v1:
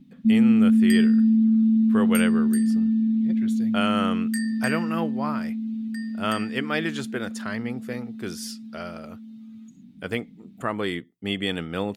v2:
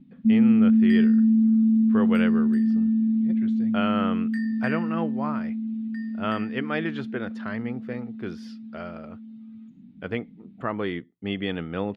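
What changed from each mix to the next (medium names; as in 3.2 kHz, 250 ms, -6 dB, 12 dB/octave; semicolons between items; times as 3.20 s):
master: add distance through air 320 m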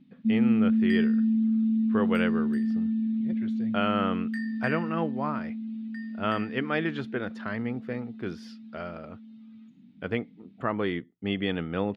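first sound: add tilt EQ +2.5 dB/octave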